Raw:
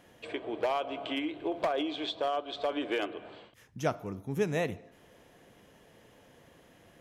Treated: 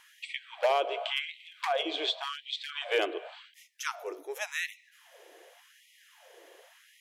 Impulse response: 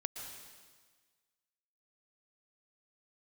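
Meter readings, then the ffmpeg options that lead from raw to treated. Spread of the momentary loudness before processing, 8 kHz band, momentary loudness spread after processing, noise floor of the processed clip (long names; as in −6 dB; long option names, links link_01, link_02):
11 LU, +6.5 dB, 12 LU, −62 dBFS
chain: -af "equalizer=frequency=1100:width_type=o:width=1.1:gain=-4.5,afftfilt=real='re*gte(b*sr/1024,300*pow(1900/300,0.5+0.5*sin(2*PI*0.89*pts/sr)))':imag='im*gte(b*sr/1024,300*pow(1900/300,0.5+0.5*sin(2*PI*0.89*pts/sr)))':win_size=1024:overlap=0.75,volume=6.5dB"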